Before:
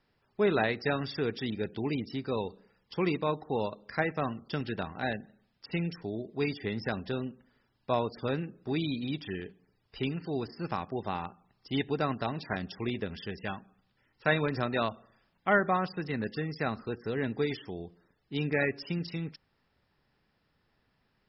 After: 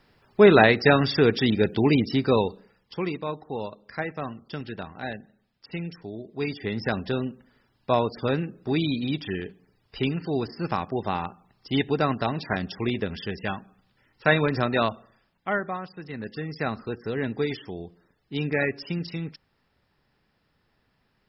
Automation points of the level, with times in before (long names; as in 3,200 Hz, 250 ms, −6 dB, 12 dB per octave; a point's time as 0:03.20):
0:02.30 +12 dB
0:03.12 −1 dB
0:06.18 −1 dB
0:06.91 +6.5 dB
0:14.90 +6.5 dB
0:15.88 −6 dB
0:16.62 +3.5 dB